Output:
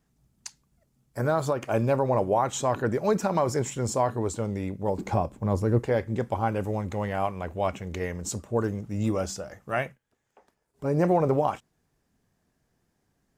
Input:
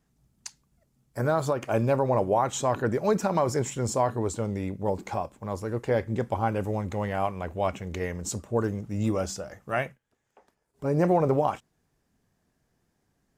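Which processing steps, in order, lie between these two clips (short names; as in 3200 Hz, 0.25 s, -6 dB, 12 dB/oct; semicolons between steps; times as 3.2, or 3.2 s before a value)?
4.98–5.86 low shelf 480 Hz +10.5 dB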